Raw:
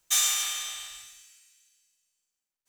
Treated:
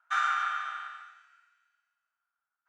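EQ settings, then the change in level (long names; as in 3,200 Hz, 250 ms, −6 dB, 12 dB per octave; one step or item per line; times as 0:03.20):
linear-phase brick-wall high-pass 620 Hz
low-pass with resonance 1,400 Hz, resonance Q 15
0.0 dB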